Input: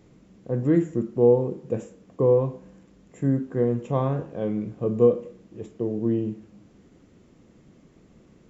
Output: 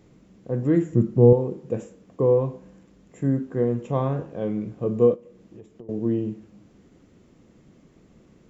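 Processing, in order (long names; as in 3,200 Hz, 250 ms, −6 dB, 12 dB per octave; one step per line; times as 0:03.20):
0:00.92–0:01.33: parametric band 120 Hz +12.5 dB 1.7 octaves
0:05.14–0:05.89: downward compressor 16 to 1, threshold −41 dBFS, peak gain reduction 19.5 dB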